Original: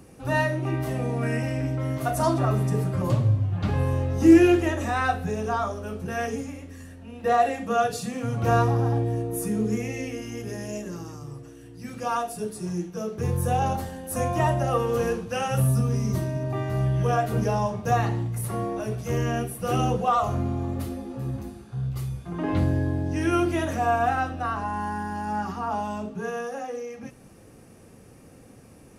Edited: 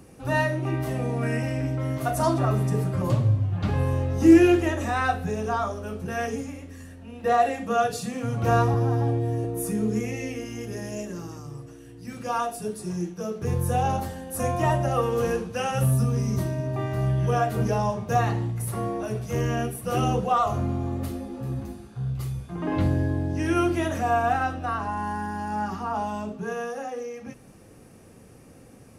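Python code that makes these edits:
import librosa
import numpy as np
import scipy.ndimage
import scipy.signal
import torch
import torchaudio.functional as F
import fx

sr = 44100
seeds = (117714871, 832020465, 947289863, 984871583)

y = fx.edit(x, sr, fx.stretch_span(start_s=8.74, length_s=0.47, factor=1.5), tone=tone)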